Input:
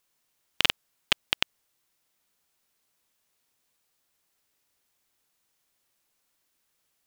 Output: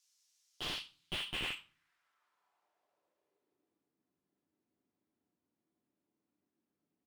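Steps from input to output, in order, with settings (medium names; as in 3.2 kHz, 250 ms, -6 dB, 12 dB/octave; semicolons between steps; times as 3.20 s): band-pass sweep 5.8 kHz -> 240 Hz, 0.50–3.96 s; speakerphone echo 80 ms, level -12 dB; on a send at -2 dB: reverberation RT60 0.45 s, pre-delay 7 ms; on the sum: slew-rate limiter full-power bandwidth 19 Hz; trim +6.5 dB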